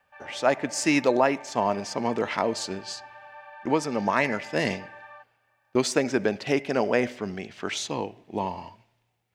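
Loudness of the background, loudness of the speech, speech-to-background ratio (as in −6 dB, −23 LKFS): −45.5 LKFS, −26.5 LKFS, 19.0 dB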